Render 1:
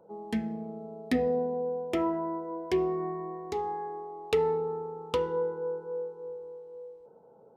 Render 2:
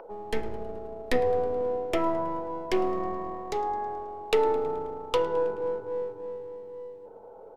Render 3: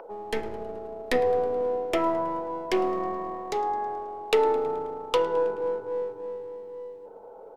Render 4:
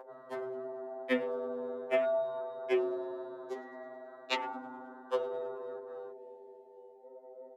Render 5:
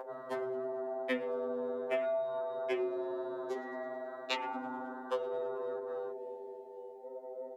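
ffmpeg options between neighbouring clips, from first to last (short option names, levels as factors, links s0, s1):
-filter_complex "[0:a]acrossover=split=330|3000[s0][s1][s2];[s0]aeval=exprs='abs(val(0))':c=same[s3];[s1]acompressor=mode=upward:threshold=0.00708:ratio=2.5[s4];[s3][s4][s2]amix=inputs=3:normalize=0,asplit=6[s5][s6][s7][s8][s9][s10];[s6]adelay=107,afreqshift=-95,volume=0.0891[s11];[s7]adelay=214,afreqshift=-190,volume=0.0562[s12];[s8]adelay=321,afreqshift=-285,volume=0.0355[s13];[s9]adelay=428,afreqshift=-380,volume=0.0224[s14];[s10]adelay=535,afreqshift=-475,volume=0.014[s15];[s5][s11][s12][s13][s14][s15]amix=inputs=6:normalize=0,volume=1.68"
-af "lowshelf=f=150:g=-9,volume=1.33"
-af "afwtdn=0.0178,highpass=250,afftfilt=real='re*2.45*eq(mod(b,6),0)':imag='im*2.45*eq(mod(b,6),0)':win_size=2048:overlap=0.75"
-af "bandreject=f=188.4:t=h:w=4,bandreject=f=376.8:t=h:w=4,bandreject=f=565.2:t=h:w=4,bandreject=f=753.6:t=h:w=4,bandreject=f=942:t=h:w=4,bandreject=f=1130.4:t=h:w=4,bandreject=f=1318.8:t=h:w=4,bandreject=f=1507.2:t=h:w=4,bandreject=f=1695.6:t=h:w=4,bandreject=f=1884:t=h:w=4,bandreject=f=2072.4:t=h:w=4,bandreject=f=2260.8:t=h:w=4,bandreject=f=2449.2:t=h:w=4,bandreject=f=2637.6:t=h:w=4,bandreject=f=2826:t=h:w=4,bandreject=f=3014.4:t=h:w=4,bandreject=f=3202.8:t=h:w=4,bandreject=f=3391.2:t=h:w=4,acompressor=threshold=0.00794:ratio=2.5,volume=2.11"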